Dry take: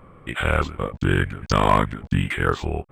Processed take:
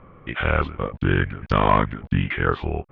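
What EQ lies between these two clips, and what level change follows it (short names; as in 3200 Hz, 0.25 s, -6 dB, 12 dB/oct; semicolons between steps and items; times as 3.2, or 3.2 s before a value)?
LPF 3300 Hz 24 dB/oct; 0.0 dB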